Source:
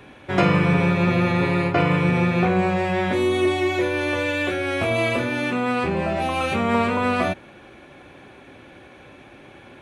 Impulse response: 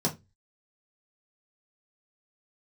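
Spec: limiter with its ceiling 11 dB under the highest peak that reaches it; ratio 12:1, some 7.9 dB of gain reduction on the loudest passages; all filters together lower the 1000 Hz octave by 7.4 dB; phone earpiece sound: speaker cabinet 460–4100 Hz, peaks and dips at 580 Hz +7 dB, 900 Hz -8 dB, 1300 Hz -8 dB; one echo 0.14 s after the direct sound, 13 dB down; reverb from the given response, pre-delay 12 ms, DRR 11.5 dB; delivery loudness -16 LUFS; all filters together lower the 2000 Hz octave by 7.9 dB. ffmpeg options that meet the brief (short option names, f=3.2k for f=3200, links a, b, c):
-filter_complex "[0:a]equalizer=f=1k:t=o:g=-4.5,equalizer=f=2k:t=o:g=-7.5,acompressor=threshold=-23dB:ratio=12,alimiter=limit=-23.5dB:level=0:latency=1,aecho=1:1:140:0.224,asplit=2[a][b];[1:a]atrim=start_sample=2205,adelay=12[c];[b][c]afir=irnorm=-1:irlink=0,volume=-19.5dB[d];[a][d]amix=inputs=2:normalize=0,highpass=460,equalizer=f=580:t=q:w=4:g=7,equalizer=f=900:t=q:w=4:g=-8,equalizer=f=1.3k:t=q:w=4:g=-8,lowpass=f=4.1k:w=0.5412,lowpass=f=4.1k:w=1.3066,volume=17.5dB"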